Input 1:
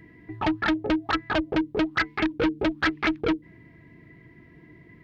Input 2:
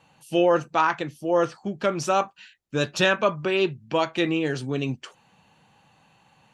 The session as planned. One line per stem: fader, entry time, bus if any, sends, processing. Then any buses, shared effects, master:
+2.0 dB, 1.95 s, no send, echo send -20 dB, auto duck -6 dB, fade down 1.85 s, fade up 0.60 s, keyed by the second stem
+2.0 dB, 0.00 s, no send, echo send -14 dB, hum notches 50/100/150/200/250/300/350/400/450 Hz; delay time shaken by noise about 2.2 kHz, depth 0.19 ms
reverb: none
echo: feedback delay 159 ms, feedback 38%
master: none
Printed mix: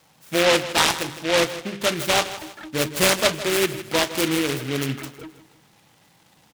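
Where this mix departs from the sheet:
stem 1 +2.0 dB -> -9.5 dB; master: extra bass shelf 62 Hz -6.5 dB

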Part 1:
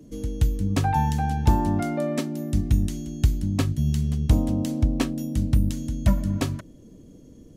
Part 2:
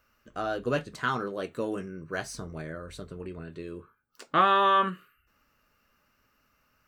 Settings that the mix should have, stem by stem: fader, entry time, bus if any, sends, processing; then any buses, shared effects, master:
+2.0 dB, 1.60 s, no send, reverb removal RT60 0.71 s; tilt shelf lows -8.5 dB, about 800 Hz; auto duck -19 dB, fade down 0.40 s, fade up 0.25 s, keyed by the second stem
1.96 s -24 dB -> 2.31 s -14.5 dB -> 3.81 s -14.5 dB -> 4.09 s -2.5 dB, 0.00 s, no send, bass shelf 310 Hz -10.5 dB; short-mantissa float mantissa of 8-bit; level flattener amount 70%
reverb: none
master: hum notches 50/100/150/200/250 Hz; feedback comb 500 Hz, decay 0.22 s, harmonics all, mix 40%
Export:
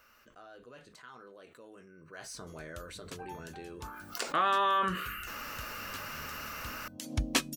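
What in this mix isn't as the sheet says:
stem 1: entry 1.60 s -> 2.35 s; master: missing hum notches 50/100/150/200/250 Hz

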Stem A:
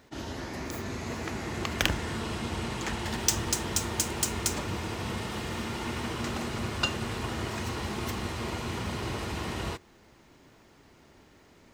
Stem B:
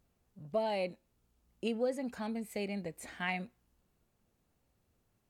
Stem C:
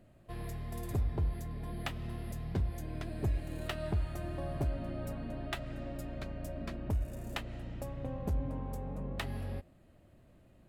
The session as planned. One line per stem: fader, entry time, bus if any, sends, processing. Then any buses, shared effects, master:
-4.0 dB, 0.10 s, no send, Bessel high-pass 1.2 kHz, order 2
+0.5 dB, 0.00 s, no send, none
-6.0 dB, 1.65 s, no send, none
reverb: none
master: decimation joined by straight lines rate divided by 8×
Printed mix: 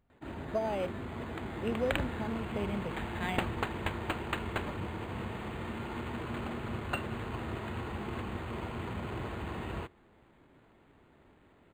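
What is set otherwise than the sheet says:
stem A: missing Bessel high-pass 1.2 kHz, order 2; stem C: muted

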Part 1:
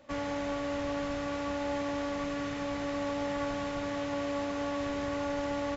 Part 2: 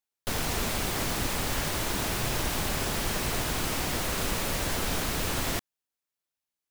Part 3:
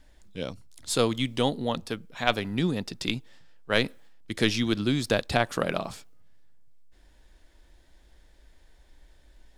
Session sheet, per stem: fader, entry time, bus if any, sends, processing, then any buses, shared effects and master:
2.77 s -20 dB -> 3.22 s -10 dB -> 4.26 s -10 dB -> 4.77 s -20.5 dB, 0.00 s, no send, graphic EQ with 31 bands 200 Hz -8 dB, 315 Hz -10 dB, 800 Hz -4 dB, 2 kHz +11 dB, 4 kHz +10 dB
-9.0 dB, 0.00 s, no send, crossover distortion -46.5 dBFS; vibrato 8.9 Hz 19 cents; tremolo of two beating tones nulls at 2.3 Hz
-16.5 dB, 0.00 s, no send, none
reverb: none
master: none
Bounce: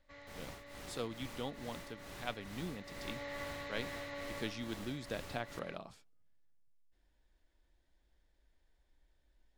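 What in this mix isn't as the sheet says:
stem 2 -9.0 dB -> -18.0 dB; master: extra treble shelf 7.3 kHz -6 dB

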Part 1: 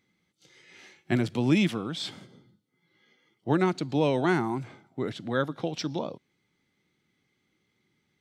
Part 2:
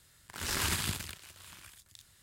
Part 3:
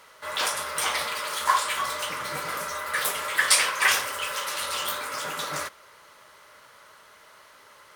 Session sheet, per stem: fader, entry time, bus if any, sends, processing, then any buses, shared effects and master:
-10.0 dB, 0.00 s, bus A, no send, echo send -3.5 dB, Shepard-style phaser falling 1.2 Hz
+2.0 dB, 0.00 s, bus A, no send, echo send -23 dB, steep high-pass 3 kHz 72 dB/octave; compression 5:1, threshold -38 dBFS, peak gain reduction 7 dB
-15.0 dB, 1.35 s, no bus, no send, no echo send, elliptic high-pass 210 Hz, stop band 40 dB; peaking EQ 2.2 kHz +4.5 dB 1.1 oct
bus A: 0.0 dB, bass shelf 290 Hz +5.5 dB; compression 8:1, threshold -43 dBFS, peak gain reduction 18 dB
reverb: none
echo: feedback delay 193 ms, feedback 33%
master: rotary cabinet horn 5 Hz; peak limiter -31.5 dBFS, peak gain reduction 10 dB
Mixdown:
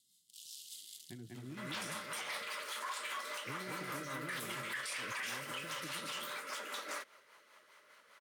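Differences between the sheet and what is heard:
stem 1 -10.0 dB -> -20.0 dB; stem 2 +2.0 dB -> -4.5 dB; stem 3 -15.0 dB -> -9.0 dB

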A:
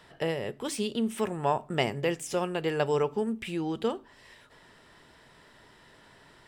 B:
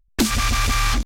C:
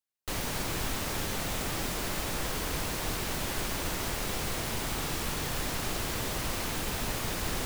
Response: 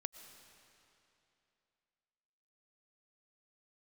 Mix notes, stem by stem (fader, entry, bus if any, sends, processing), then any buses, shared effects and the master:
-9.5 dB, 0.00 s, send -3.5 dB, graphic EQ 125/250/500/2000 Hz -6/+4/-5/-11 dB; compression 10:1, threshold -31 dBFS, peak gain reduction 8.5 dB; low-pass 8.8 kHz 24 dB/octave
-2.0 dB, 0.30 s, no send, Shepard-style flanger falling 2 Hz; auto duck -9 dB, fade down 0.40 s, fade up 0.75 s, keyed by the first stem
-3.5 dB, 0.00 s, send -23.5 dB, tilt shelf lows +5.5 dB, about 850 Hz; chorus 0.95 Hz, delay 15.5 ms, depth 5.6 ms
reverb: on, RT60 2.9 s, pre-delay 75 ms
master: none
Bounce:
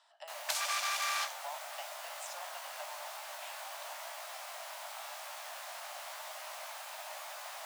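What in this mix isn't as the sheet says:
stem B: missing Shepard-style flanger falling 2 Hz; master: extra steep high-pass 590 Hz 96 dB/octave

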